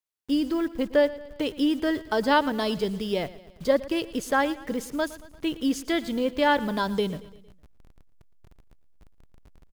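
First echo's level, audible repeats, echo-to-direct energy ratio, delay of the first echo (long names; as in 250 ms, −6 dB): −18.0 dB, 4, −16.5 dB, 114 ms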